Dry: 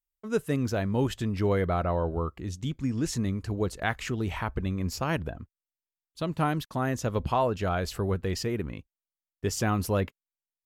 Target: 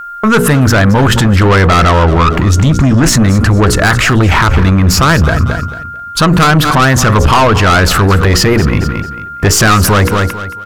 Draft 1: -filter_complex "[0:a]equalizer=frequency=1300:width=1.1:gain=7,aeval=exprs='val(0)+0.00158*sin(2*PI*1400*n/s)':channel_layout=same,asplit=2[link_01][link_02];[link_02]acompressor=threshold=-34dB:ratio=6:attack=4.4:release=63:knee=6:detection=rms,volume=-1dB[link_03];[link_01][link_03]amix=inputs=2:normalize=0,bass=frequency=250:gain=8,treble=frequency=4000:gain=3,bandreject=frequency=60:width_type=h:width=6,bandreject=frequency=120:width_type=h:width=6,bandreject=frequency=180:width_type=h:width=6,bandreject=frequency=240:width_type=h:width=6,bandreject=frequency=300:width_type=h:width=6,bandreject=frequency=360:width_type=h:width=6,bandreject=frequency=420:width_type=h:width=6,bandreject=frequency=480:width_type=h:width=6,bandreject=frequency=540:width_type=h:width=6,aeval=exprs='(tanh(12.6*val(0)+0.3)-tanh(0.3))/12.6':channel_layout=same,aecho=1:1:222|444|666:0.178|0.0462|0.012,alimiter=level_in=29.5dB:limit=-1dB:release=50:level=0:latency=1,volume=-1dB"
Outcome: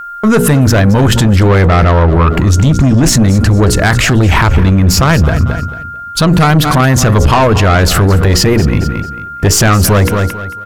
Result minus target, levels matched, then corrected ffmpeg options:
1,000 Hz band −2.5 dB
-filter_complex "[0:a]equalizer=frequency=1300:width=1.1:gain=16.5,aeval=exprs='val(0)+0.00158*sin(2*PI*1400*n/s)':channel_layout=same,asplit=2[link_01][link_02];[link_02]acompressor=threshold=-34dB:ratio=6:attack=4.4:release=63:knee=6:detection=rms,volume=-1dB[link_03];[link_01][link_03]amix=inputs=2:normalize=0,bass=frequency=250:gain=8,treble=frequency=4000:gain=3,bandreject=frequency=60:width_type=h:width=6,bandreject=frequency=120:width_type=h:width=6,bandreject=frequency=180:width_type=h:width=6,bandreject=frequency=240:width_type=h:width=6,bandreject=frequency=300:width_type=h:width=6,bandreject=frequency=360:width_type=h:width=6,bandreject=frequency=420:width_type=h:width=6,bandreject=frequency=480:width_type=h:width=6,bandreject=frequency=540:width_type=h:width=6,aeval=exprs='(tanh(12.6*val(0)+0.3)-tanh(0.3))/12.6':channel_layout=same,aecho=1:1:222|444|666:0.178|0.0462|0.012,alimiter=level_in=29.5dB:limit=-1dB:release=50:level=0:latency=1,volume=-1dB"

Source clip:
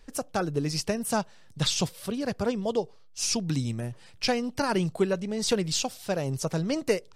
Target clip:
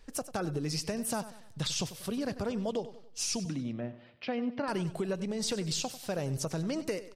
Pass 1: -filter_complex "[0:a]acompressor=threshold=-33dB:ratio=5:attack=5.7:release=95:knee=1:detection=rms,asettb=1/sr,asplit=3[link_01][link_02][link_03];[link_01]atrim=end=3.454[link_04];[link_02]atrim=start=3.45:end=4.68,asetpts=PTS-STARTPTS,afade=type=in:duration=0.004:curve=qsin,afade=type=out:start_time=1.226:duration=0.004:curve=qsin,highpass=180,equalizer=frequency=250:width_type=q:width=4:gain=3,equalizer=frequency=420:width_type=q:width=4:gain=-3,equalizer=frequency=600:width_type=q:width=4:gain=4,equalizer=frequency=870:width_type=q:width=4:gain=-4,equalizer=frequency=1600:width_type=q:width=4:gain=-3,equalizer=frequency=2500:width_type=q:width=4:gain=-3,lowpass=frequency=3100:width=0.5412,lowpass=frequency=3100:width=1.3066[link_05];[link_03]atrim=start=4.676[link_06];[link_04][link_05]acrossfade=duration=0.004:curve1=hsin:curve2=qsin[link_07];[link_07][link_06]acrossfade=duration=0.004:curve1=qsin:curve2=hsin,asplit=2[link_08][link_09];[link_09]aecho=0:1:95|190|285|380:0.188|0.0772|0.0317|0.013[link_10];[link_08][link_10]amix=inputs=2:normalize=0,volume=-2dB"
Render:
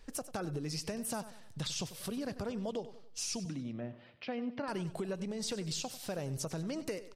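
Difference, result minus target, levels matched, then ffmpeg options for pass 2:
downward compressor: peak gain reduction +5 dB
-filter_complex "[0:a]acompressor=threshold=-27dB:ratio=5:attack=5.7:release=95:knee=1:detection=rms,asettb=1/sr,asplit=3[link_01][link_02][link_03];[link_01]atrim=end=3.454[link_04];[link_02]atrim=start=3.45:end=4.68,asetpts=PTS-STARTPTS,afade=type=in:duration=0.004:curve=qsin,afade=type=out:start_time=1.226:duration=0.004:curve=qsin,highpass=180,equalizer=frequency=250:width_type=q:width=4:gain=3,equalizer=frequency=420:width_type=q:width=4:gain=-3,equalizer=frequency=600:width_type=q:width=4:gain=4,equalizer=frequency=870:width_type=q:width=4:gain=-4,equalizer=frequency=1600:width_type=q:width=4:gain=-3,equalizer=frequency=2500:width_type=q:width=4:gain=-3,lowpass=frequency=3100:width=0.5412,lowpass=frequency=3100:width=1.3066[link_05];[link_03]atrim=start=4.676[link_06];[link_04][link_05]acrossfade=duration=0.004:curve1=hsin:curve2=qsin[link_07];[link_07][link_06]acrossfade=duration=0.004:curve1=qsin:curve2=hsin,asplit=2[link_08][link_09];[link_09]aecho=0:1:95|190|285|380:0.188|0.0772|0.0317|0.013[link_10];[link_08][link_10]amix=inputs=2:normalize=0,volume=-2dB"

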